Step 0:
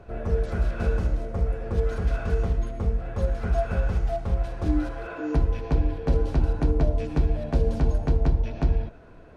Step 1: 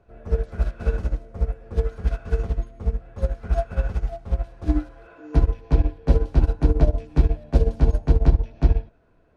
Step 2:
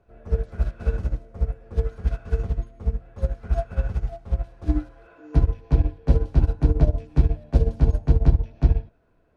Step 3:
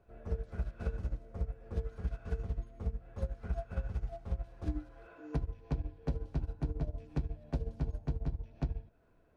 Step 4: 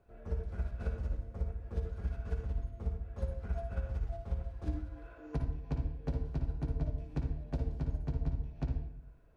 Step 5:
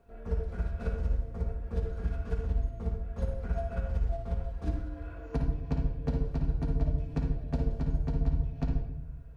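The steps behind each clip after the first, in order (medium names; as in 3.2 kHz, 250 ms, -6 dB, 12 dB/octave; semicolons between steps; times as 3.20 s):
upward expansion 2.5:1, over -29 dBFS; trim +7.5 dB
dynamic bell 110 Hz, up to +7 dB, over -32 dBFS, Q 0.86; trim -3.5 dB
compression 10:1, threshold -27 dBFS, peak gain reduction 18 dB; trim -4 dB
reverberation RT60 0.70 s, pre-delay 55 ms, DRR 4.5 dB; trim -1.5 dB
simulated room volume 2200 m³, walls furnished, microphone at 1.7 m; trim +4 dB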